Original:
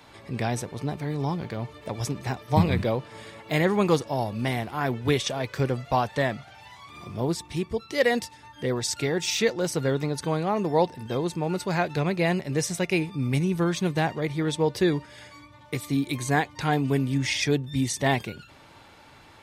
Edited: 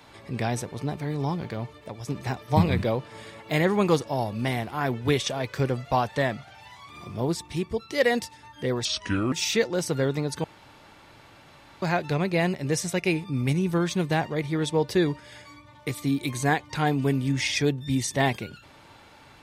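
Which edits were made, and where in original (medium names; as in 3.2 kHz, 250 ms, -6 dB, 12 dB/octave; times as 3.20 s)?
1.57–2.08 s: fade out, to -10.5 dB
8.85–9.18 s: speed 70%
10.30–11.68 s: room tone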